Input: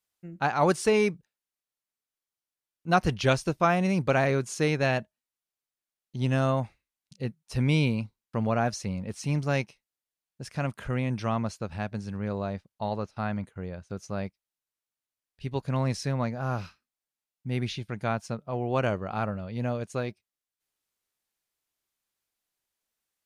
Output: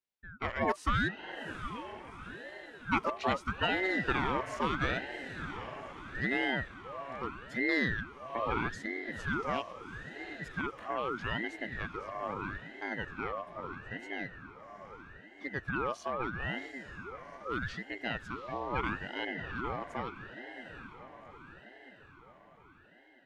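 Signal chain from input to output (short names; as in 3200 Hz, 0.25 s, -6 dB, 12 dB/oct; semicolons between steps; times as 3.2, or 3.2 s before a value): band inversion scrambler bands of 1000 Hz; tone controls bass -13 dB, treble -11 dB; on a send: diffused feedback echo 0.77 s, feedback 58%, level -10 dB; on the sum: ring modulator with a swept carrier 720 Hz, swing 70%, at 0.78 Hz; gain -3.5 dB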